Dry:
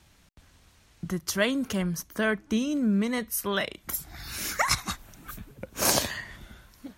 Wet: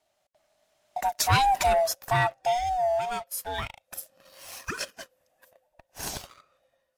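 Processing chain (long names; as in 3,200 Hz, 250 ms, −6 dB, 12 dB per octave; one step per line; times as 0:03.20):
neighbouring bands swapped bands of 500 Hz
source passing by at 0:01.59, 25 m/s, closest 12 metres
leveller curve on the samples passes 2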